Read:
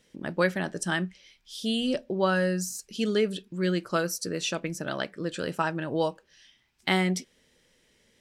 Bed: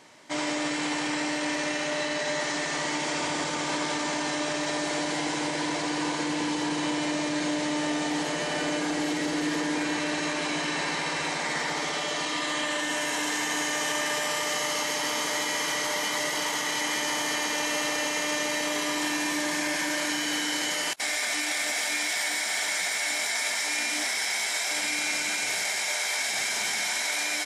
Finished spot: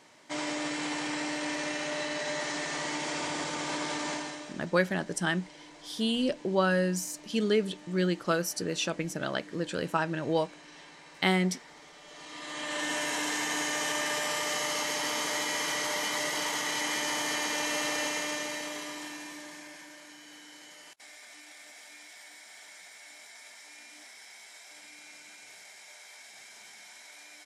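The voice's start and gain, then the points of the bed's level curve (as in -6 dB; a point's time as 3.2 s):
4.35 s, -1.0 dB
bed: 4.13 s -4.5 dB
4.69 s -22.5 dB
11.99 s -22.5 dB
12.83 s -3 dB
18.05 s -3 dB
20.02 s -22 dB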